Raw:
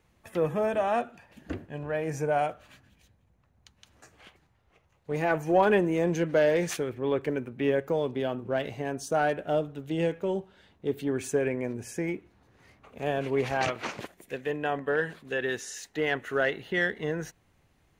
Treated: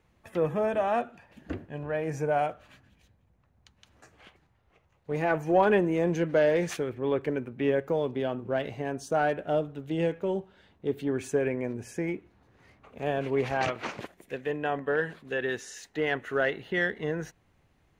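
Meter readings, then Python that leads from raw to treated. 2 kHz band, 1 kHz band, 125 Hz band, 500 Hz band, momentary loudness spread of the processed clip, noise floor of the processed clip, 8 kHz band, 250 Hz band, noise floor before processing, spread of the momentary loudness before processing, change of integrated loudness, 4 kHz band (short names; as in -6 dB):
-1.0 dB, 0.0 dB, 0.0 dB, 0.0 dB, 12 LU, -67 dBFS, -4.5 dB, 0.0 dB, -67 dBFS, 11 LU, 0.0 dB, -2.0 dB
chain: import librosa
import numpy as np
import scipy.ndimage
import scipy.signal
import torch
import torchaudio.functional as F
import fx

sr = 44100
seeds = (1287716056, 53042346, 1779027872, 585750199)

y = fx.high_shelf(x, sr, hz=5000.0, db=-7.0)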